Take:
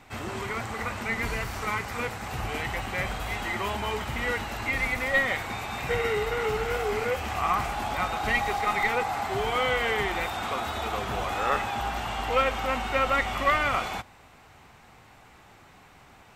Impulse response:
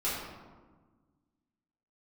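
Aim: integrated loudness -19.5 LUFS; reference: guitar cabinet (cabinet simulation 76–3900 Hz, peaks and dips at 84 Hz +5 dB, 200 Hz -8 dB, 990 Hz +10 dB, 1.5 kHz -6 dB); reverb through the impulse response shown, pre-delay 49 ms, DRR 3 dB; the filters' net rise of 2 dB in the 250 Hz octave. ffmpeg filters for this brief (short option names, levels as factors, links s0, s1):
-filter_complex "[0:a]equalizer=f=250:t=o:g=5.5,asplit=2[s0][s1];[1:a]atrim=start_sample=2205,adelay=49[s2];[s1][s2]afir=irnorm=-1:irlink=0,volume=0.299[s3];[s0][s3]amix=inputs=2:normalize=0,highpass=76,equalizer=f=84:t=q:w=4:g=5,equalizer=f=200:t=q:w=4:g=-8,equalizer=f=990:t=q:w=4:g=10,equalizer=f=1500:t=q:w=4:g=-6,lowpass=f=3900:w=0.5412,lowpass=f=3900:w=1.3066,volume=1.78"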